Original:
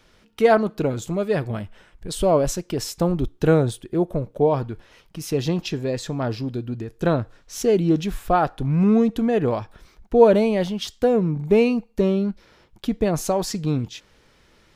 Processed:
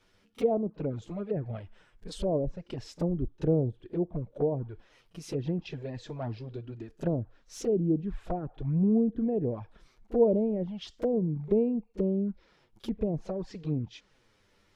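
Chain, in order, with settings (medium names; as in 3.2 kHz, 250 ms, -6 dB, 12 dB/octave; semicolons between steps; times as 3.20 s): low-pass that closes with the level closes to 600 Hz, closed at -16 dBFS; dynamic bell 1.3 kHz, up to -6 dB, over -46 dBFS, Q 2.2; touch-sensitive flanger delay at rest 10.9 ms, full sweep at -16.5 dBFS; pre-echo 35 ms -21 dB; trim -7 dB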